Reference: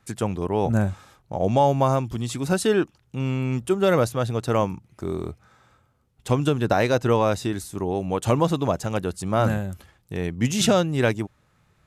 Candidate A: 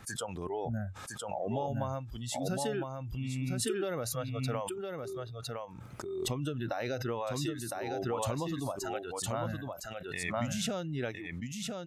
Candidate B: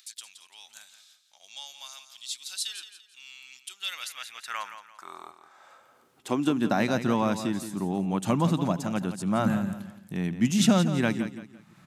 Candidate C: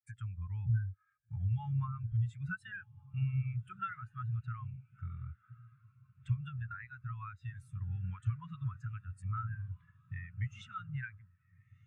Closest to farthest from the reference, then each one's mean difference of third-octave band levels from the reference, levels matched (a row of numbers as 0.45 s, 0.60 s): A, B, C; 8.0 dB, 11.0 dB, 18.0 dB